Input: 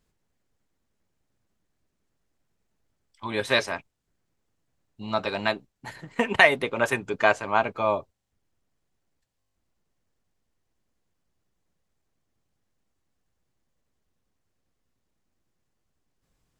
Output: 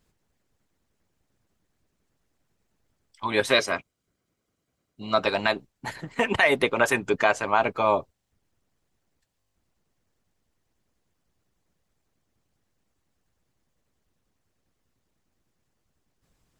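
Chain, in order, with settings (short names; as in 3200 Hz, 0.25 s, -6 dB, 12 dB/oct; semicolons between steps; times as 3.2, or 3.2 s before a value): 3.51–5.22 notch comb 880 Hz; harmonic-percussive split harmonic -7 dB; limiter -14.5 dBFS, peak gain reduction 11.5 dB; gain +6.5 dB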